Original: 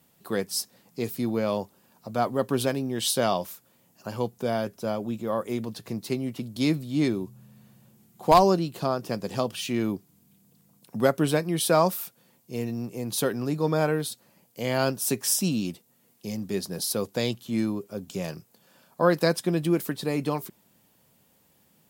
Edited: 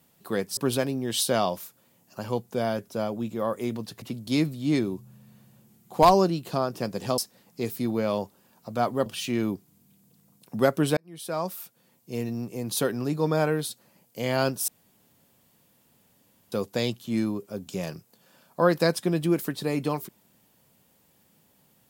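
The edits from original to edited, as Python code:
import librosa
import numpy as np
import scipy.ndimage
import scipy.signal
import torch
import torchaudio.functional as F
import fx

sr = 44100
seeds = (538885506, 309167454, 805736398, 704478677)

y = fx.edit(x, sr, fx.move(start_s=0.57, length_s=1.88, to_s=9.47),
    fx.cut(start_s=5.9, length_s=0.41),
    fx.fade_in_span(start_s=11.38, length_s=1.17),
    fx.room_tone_fill(start_s=15.09, length_s=1.84), tone=tone)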